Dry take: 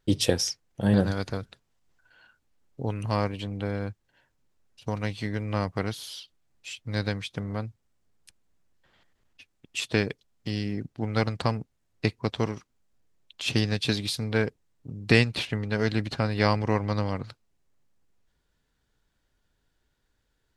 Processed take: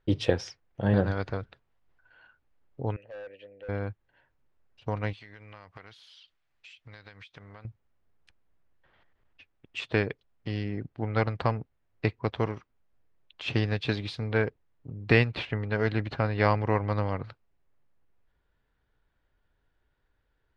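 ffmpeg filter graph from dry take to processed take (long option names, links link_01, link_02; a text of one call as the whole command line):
ffmpeg -i in.wav -filter_complex "[0:a]asettb=1/sr,asplit=3[link_01][link_02][link_03];[link_01]atrim=end=2.964[link_04];[link_02]atrim=start=2.96:end=3.69,asetpts=PTS-STARTPTS,afade=type=in:duration=0.004:curve=qsin,afade=type=out:start_time=0.726:duration=0.004:curve=qsin,asplit=3[link_05][link_06][link_07];[link_05]bandpass=frequency=530:width_type=q:width=8,volume=0dB[link_08];[link_06]bandpass=frequency=1840:width_type=q:width=8,volume=-6dB[link_09];[link_07]bandpass=frequency=2480:width_type=q:width=8,volume=-9dB[link_10];[link_08][link_09][link_10]amix=inputs=3:normalize=0,aemphasis=mode=production:type=50fm,asoftclip=type=hard:threshold=-39.5dB[link_11];[link_03]atrim=start=3.686[link_12];[link_04][link_11]acrossfade=duration=0.004:curve1=hsin:curve2=qsin[link_13];[link_13][link_12]acrossfade=duration=0.004:curve1=qsin:curve2=hsin,asettb=1/sr,asplit=3[link_14][link_15][link_16];[link_14]atrim=end=5.134[link_17];[link_15]atrim=start=5.13:end=7.65,asetpts=PTS-STARTPTS,afade=type=in:duration=0.004:curve=qsin,afade=type=out:start_time=2.516:duration=0.004:curve=qsin,tiltshelf=frequency=1100:gain=-8,acompressor=threshold=-42dB:ratio=10:attack=3.2:release=140:knee=1:detection=peak[link_18];[link_16]atrim=start=7.646[link_19];[link_17][link_18]acrossfade=duration=0.004:curve1=hsin:curve2=qsin[link_20];[link_20][link_19]acrossfade=duration=0.004:curve1=qsin:curve2=hsin,lowpass=2400,equalizer=frequency=210:width_type=o:width=1.2:gain=-5.5,volume=1dB" out.wav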